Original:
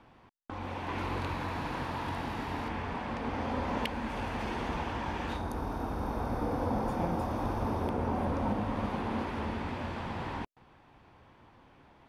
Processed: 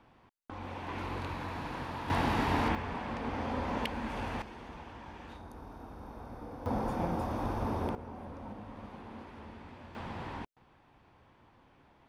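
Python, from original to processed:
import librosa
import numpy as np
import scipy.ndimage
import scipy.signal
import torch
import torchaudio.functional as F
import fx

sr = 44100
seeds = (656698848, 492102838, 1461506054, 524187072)

y = fx.gain(x, sr, db=fx.steps((0.0, -3.5), (2.1, 6.5), (2.75, -1.5), (4.42, -12.5), (6.66, -1.5), (7.95, -13.5), (9.95, -4.0)))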